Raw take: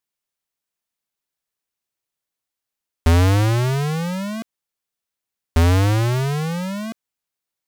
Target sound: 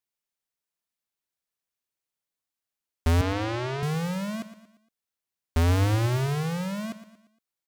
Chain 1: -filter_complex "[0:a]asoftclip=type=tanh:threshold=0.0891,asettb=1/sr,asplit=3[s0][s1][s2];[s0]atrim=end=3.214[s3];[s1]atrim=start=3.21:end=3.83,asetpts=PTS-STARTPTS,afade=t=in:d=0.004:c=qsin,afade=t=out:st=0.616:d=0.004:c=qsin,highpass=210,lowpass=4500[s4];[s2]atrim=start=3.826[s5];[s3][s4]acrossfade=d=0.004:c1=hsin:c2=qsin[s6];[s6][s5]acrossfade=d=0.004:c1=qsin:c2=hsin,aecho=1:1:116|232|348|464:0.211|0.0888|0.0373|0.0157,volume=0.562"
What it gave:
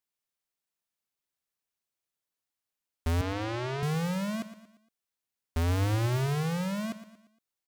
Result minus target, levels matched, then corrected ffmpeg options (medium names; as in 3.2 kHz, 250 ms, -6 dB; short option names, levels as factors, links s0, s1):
saturation: distortion +11 dB
-filter_complex "[0:a]asoftclip=type=tanh:threshold=0.237,asettb=1/sr,asplit=3[s0][s1][s2];[s0]atrim=end=3.214[s3];[s1]atrim=start=3.21:end=3.83,asetpts=PTS-STARTPTS,afade=t=in:d=0.004:c=qsin,afade=t=out:st=0.616:d=0.004:c=qsin,highpass=210,lowpass=4500[s4];[s2]atrim=start=3.826[s5];[s3][s4]acrossfade=d=0.004:c1=hsin:c2=qsin[s6];[s6][s5]acrossfade=d=0.004:c1=qsin:c2=hsin,aecho=1:1:116|232|348|464:0.211|0.0888|0.0373|0.0157,volume=0.562"